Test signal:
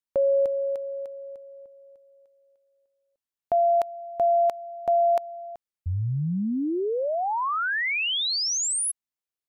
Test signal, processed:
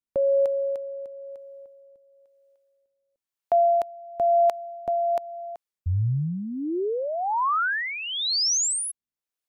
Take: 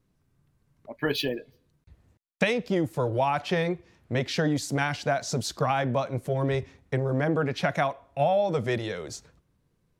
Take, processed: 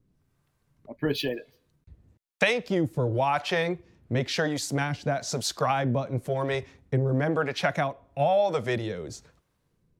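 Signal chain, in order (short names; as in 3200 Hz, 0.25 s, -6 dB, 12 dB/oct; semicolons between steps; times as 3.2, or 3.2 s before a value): harmonic tremolo 1 Hz, depth 70%, crossover 460 Hz; gain +3.5 dB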